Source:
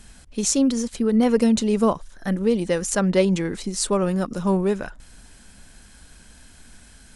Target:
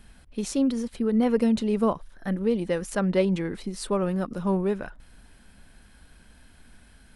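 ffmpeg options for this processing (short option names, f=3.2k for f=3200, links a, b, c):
-af "equalizer=f=6.9k:w=1.2:g=-12.5,volume=-4dB"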